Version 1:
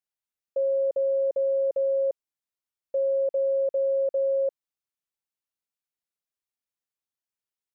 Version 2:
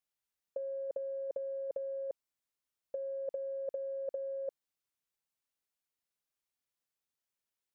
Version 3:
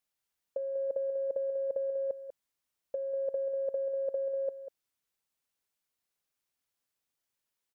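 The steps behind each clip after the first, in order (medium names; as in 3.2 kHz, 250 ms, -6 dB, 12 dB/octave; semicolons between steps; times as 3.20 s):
compressor with a negative ratio -29 dBFS, ratio -0.5; trim -6.5 dB
delay 193 ms -9.5 dB; trim +3.5 dB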